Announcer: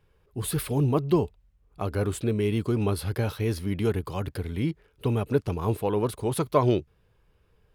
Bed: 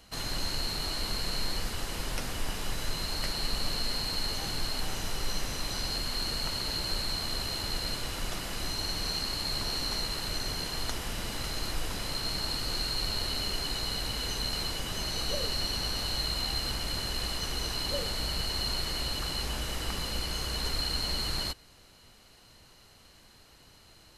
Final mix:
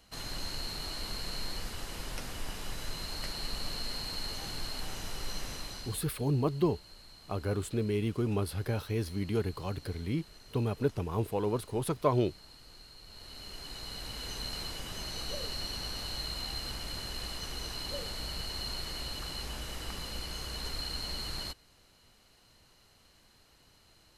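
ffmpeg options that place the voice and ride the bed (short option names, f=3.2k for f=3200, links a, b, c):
-filter_complex "[0:a]adelay=5500,volume=-5.5dB[a];[1:a]volume=10dB,afade=t=out:st=5.52:d=0.56:silence=0.158489,afade=t=in:st=13.05:d=1.35:silence=0.16788[b];[a][b]amix=inputs=2:normalize=0"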